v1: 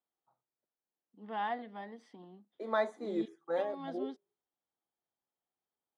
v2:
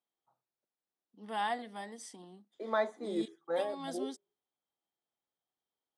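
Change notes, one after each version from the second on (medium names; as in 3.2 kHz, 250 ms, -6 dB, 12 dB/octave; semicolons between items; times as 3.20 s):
first voice: remove distance through air 350 m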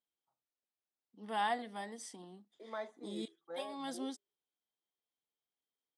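second voice -11.5 dB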